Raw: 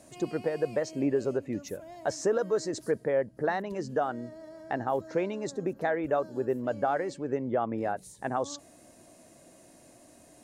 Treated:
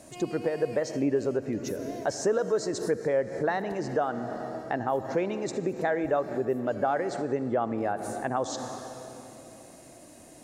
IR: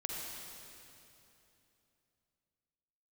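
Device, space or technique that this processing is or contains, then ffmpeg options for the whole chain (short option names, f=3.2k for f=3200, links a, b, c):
ducked reverb: -filter_complex "[0:a]asplit=3[a][b][c];[1:a]atrim=start_sample=2205[d];[b][d]afir=irnorm=-1:irlink=0[e];[c]apad=whole_len=460285[f];[e][f]sidechaincompress=threshold=-40dB:ratio=6:attack=28:release=131,volume=-1.5dB[g];[a][g]amix=inputs=2:normalize=0"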